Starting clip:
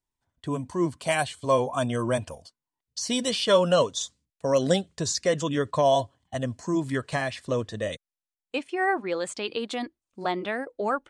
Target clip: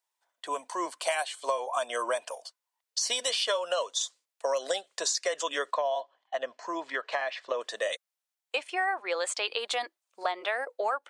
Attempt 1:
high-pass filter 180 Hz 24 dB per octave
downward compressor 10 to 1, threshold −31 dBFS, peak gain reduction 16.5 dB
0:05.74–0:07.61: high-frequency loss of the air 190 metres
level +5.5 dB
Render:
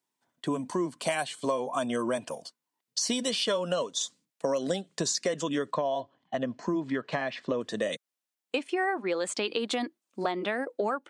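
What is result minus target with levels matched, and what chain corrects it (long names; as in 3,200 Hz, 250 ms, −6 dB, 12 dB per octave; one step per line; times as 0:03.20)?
250 Hz band +14.5 dB
high-pass filter 560 Hz 24 dB per octave
downward compressor 10 to 1, threshold −31 dBFS, peak gain reduction 14.5 dB
0:05.74–0:07.61: high-frequency loss of the air 190 metres
level +5.5 dB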